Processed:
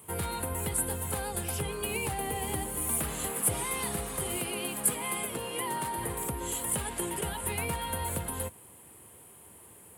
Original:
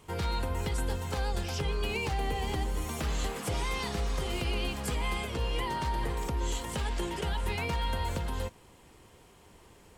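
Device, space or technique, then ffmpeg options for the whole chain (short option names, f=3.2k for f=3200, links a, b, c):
budget condenser microphone: -filter_complex "[0:a]asettb=1/sr,asplit=3[a][b][c];[a]atrim=end=4.364[d];[b]atrim=start=4.36:end=5.98,asetpts=PTS-STARTPTS,afade=t=in:d=0.004:c=qsin,afade=t=out:st=1.616:d=0.004:c=qsin,highpass=150[e];[c]atrim=start=5.976[f];[d][e]acrossfade=d=0.004:c1=hsin:c2=qsin[g];[g][f]acrossfade=d=0.004:c1=qsin:c2=hsin,highpass=f=78:w=0.5412,highpass=f=78:w=1.3066,highshelf=f=7.6k:t=q:w=3:g=12"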